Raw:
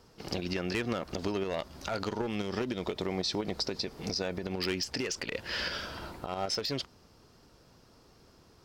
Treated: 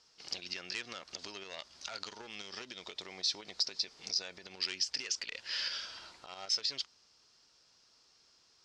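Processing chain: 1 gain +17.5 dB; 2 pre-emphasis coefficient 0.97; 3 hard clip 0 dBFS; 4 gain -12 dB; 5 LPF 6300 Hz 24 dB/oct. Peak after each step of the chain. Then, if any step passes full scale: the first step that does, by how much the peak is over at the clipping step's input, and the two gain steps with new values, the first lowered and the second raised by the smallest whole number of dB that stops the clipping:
-0.5, -4.5, -4.5, -16.5, -17.5 dBFS; no overload

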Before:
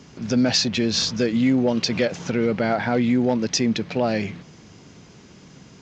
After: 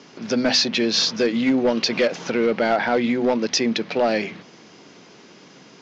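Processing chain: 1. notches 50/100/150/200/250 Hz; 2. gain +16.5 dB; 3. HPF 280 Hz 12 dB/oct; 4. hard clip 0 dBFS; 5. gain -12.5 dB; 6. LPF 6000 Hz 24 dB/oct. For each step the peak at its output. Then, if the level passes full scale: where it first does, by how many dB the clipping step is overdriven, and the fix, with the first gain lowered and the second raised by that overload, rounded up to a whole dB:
-7.5, +9.0, +7.5, 0.0, -12.5, -11.0 dBFS; step 2, 7.5 dB; step 2 +8.5 dB, step 5 -4.5 dB

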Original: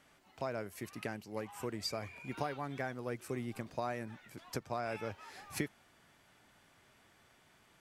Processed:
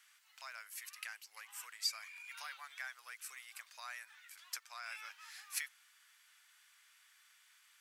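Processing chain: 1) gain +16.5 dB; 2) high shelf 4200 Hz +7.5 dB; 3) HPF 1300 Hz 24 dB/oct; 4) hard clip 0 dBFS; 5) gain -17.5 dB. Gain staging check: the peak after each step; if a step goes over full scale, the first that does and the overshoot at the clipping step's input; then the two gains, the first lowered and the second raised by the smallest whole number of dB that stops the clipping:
-2.5, -2.0, -5.0, -5.0, -22.5 dBFS; no overload

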